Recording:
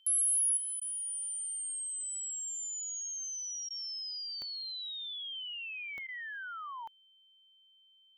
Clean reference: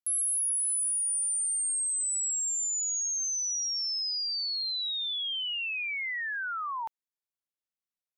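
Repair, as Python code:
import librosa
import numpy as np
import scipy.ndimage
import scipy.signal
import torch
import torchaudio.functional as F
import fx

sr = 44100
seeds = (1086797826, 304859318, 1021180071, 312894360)

y = fx.fix_declick_ar(x, sr, threshold=10.0)
y = fx.notch(y, sr, hz=3100.0, q=30.0)
y = fx.fix_interpolate(y, sr, at_s=(0.8, 3.69, 6.07), length_ms=14.0)
y = fx.gain(y, sr, db=fx.steps((0.0, 0.0), (0.57, 8.5)))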